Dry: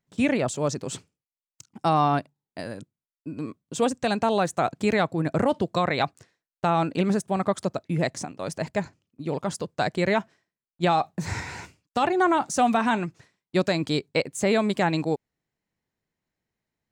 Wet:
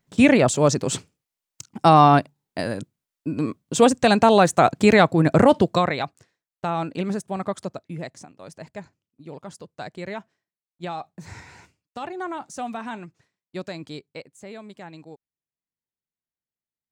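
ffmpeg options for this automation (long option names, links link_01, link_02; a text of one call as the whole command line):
ffmpeg -i in.wav -af "volume=8dB,afade=type=out:start_time=5.59:duration=0.41:silence=0.281838,afade=type=out:start_time=7.56:duration=0.54:silence=0.446684,afade=type=out:start_time=13.81:duration=0.57:silence=0.421697" out.wav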